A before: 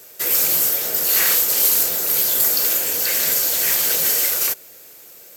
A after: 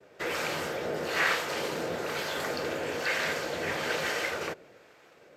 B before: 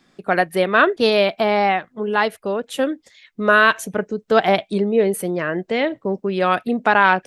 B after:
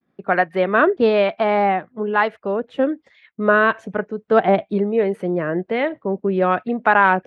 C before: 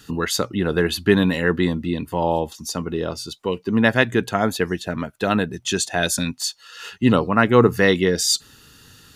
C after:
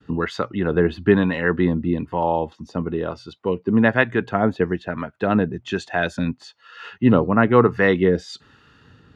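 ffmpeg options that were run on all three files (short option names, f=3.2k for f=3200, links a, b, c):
-filter_complex "[0:a]lowpass=2k,agate=range=-33dB:threshold=-51dB:ratio=3:detection=peak,highpass=56,acrossover=split=680[a][b];[a]aeval=exprs='val(0)*(1-0.5/2+0.5/2*cos(2*PI*1.1*n/s))':c=same[c];[b]aeval=exprs='val(0)*(1-0.5/2-0.5/2*cos(2*PI*1.1*n/s))':c=same[d];[c][d]amix=inputs=2:normalize=0,volume=3dB"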